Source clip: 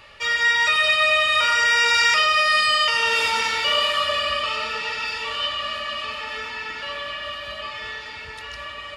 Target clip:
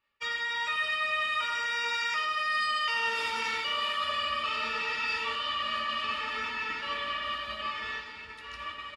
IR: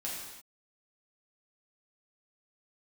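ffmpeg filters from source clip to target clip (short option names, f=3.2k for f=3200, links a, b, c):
-filter_complex "[0:a]agate=range=-33dB:threshold=-29dB:ratio=3:detection=peak,firequalizer=gain_entry='entry(130,0);entry(240,7);entry(630,-3);entry(1000,5);entry(5900,-1)':delay=0.05:min_phase=1,areverse,acompressor=threshold=-25dB:ratio=6,areverse,asplit=2[a][b];[b]adelay=13,volume=-12dB[c];[a][c]amix=inputs=2:normalize=0,asplit=2[d][e];[1:a]atrim=start_sample=2205,asetrate=74970,aresample=44100[f];[e][f]afir=irnorm=-1:irlink=0,volume=-5dB[g];[d][g]amix=inputs=2:normalize=0,volume=-6dB"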